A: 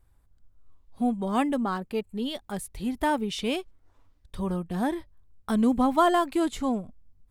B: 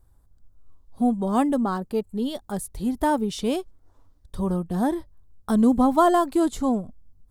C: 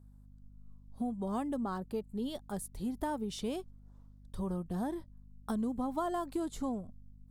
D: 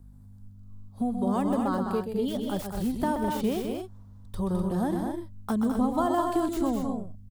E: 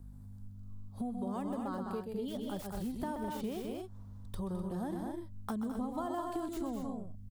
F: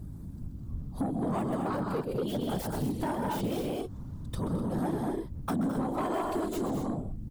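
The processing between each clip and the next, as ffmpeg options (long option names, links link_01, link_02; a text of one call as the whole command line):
ffmpeg -i in.wav -af "equalizer=frequency=2400:width=1.2:gain=-11.5,volume=4.5dB" out.wav
ffmpeg -i in.wav -af "acompressor=threshold=-23dB:ratio=6,aeval=exprs='val(0)+0.00501*(sin(2*PI*50*n/s)+sin(2*PI*2*50*n/s)/2+sin(2*PI*3*50*n/s)/3+sin(2*PI*4*50*n/s)/4+sin(2*PI*5*50*n/s)/5)':channel_layout=same,volume=-8.5dB" out.wav
ffmpeg -i in.wav -filter_complex "[0:a]acrossover=split=310|830|2700[link_01][link_02][link_03][link_04];[link_04]aeval=exprs='(mod(168*val(0)+1,2)-1)/168':channel_layout=same[link_05];[link_01][link_02][link_03][link_05]amix=inputs=4:normalize=0,aecho=1:1:128.3|209.9|250.7:0.447|0.501|0.398,volume=7dB" out.wav
ffmpeg -i in.wav -af "acompressor=threshold=-40dB:ratio=2.5" out.wav
ffmpeg -i in.wav -af "afftfilt=real='hypot(re,im)*cos(2*PI*random(0))':imag='hypot(re,im)*sin(2*PI*random(1))':win_size=512:overlap=0.75,aeval=exprs='0.0355*(cos(1*acos(clip(val(0)/0.0355,-1,1)))-cos(1*PI/2))+0.00708*(cos(5*acos(clip(val(0)/0.0355,-1,1)))-cos(5*PI/2))':channel_layout=same,volume=8.5dB" out.wav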